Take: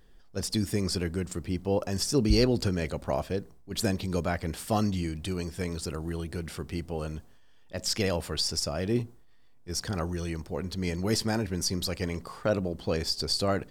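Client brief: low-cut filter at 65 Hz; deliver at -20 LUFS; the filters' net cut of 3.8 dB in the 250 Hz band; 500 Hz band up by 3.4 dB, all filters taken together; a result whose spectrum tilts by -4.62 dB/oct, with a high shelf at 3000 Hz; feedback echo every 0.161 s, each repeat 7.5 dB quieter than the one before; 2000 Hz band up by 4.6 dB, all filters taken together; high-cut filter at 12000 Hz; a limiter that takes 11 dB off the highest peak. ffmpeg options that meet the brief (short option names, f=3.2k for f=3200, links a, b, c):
-af "highpass=65,lowpass=12k,equalizer=f=250:t=o:g=-7.5,equalizer=f=500:t=o:g=6,equalizer=f=2k:t=o:g=7.5,highshelf=f=3k:g=-5.5,alimiter=limit=-20.5dB:level=0:latency=1,aecho=1:1:161|322|483|644|805:0.422|0.177|0.0744|0.0312|0.0131,volume=12.5dB"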